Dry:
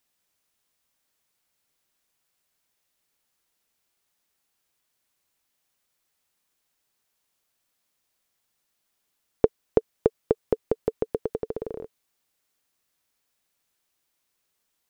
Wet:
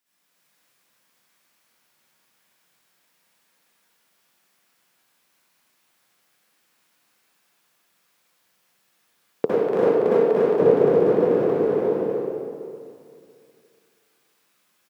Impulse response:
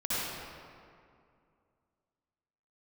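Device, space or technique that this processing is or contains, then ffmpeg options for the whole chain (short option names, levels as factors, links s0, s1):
stadium PA: -filter_complex "[0:a]highpass=f=140:w=0.5412,highpass=f=140:w=1.3066,equalizer=f=1700:t=o:w=1.4:g=3,aecho=1:1:244.9|291.5:0.562|0.891,bandreject=f=82.6:t=h:w=4,bandreject=f=165.2:t=h:w=4,bandreject=f=247.8:t=h:w=4,bandreject=f=330.4:t=h:w=4,bandreject=f=413:t=h:w=4,bandreject=f=495.6:t=h:w=4,bandreject=f=578.2:t=h:w=4,bandreject=f=660.8:t=h:w=4,bandreject=f=743.4:t=h:w=4,bandreject=f=826:t=h:w=4,bandreject=f=908.6:t=h:w=4,bandreject=f=991.2:t=h:w=4,bandreject=f=1073.8:t=h:w=4,bandreject=f=1156.4:t=h:w=4,bandreject=f=1239:t=h:w=4,bandreject=f=1321.6:t=h:w=4[s0];[1:a]atrim=start_sample=2205[s1];[s0][s1]afir=irnorm=-1:irlink=0,asettb=1/sr,asplit=3[s2][s3][s4];[s2]atrim=end=9.454[s5];[s3]atrim=start=9.45:end=10.6,asetpts=PTS-STARTPTS,afade=t=in:d=0.004:c=qsin,afade=t=out:st=1.146:d=0.004:c=qsin,lowshelf=f=400:g=-8[s6];[s4]atrim=start=10.596[s7];[s5][s6]acrossfade=d=0.004:c1=hsin:c2=qsin[s8];[s8][s7]acrossfade=d=0.004:c1=qsin:c2=hsin"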